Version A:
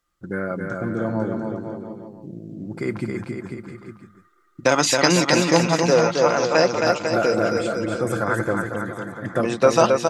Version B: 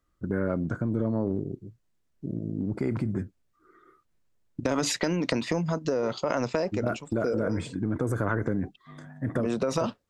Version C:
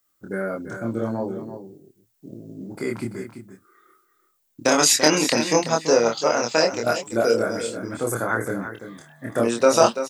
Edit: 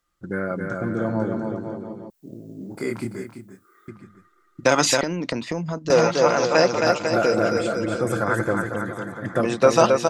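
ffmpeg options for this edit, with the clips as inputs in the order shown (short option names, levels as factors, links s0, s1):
-filter_complex "[0:a]asplit=3[s0][s1][s2];[s0]atrim=end=2.102[s3];[2:a]atrim=start=2.098:end=3.882[s4];[s1]atrim=start=3.878:end=5.012[s5];[1:a]atrim=start=5.008:end=5.902[s6];[s2]atrim=start=5.898[s7];[s3][s4]acrossfade=d=0.004:c1=hsin:c2=hsin[s8];[s8][s5]acrossfade=d=0.004:c1=hsin:c2=hsin[s9];[s9][s6]acrossfade=d=0.004:c1=hsin:c2=hsin[s10];[s10][s7]acrossfade=d=0.004:c1=hsin:c2=hsin"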